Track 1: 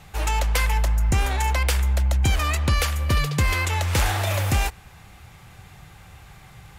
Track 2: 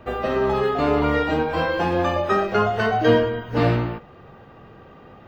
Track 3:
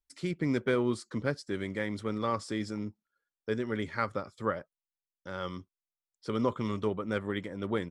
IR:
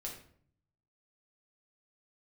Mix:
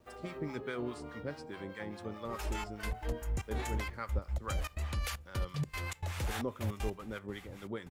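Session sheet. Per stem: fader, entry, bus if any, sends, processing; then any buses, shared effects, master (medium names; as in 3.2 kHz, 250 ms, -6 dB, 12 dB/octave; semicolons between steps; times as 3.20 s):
-4.0 dB, 2.25 s, send -17 dB, peak limiter -23 dBFS, peak gain reduction 10.5 dB; trance gate "xxxx..x.x.xx." 155 bpm -24 dB; bit crusher 12-bit
-16.5 dB, 0.00 s, no send, bit crusher 8-bit; auto duck -7 dB, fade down 0.65 s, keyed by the third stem
-8.0 dB, 0.00 s, send -11.5 dB, none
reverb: on, RT60 0.60 s, pre-delay 6 ms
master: harmonic tremolo 4.8 Hz, depth 70%, crossover 760 Hz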